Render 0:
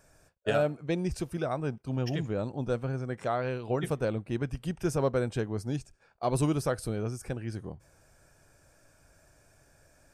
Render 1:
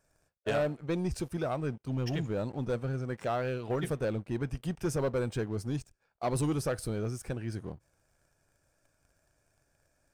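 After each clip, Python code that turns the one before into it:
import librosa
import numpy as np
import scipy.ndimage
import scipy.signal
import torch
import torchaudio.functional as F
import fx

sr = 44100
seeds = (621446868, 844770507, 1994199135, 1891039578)

y = fx.leveller(x, sr, passes=2)
y = F.gain(torch.from_numpy(y), -7.5).numpy()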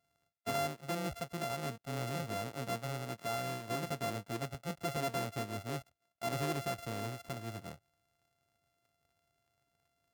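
y = np.r_[np.sort(x[:len(x) // 64 * 64].reshape(-1, 64), axis=1).ravel(), x[len(x) // 64 * 64:]]
y = scipy.signal.sosfilt(scipy.signal.butter(2, 96.0, 'highpass', fs=sr, output='sos'), y)
y = F.gain(torch.from_numpy(y), -5.5).numpy()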